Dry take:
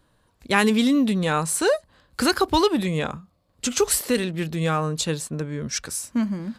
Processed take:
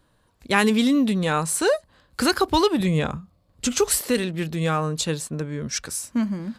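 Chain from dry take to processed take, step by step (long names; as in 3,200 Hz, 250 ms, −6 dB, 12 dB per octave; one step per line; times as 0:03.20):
0:02.80–0:03.77: low-shelf EQ 180 Hz +8 dB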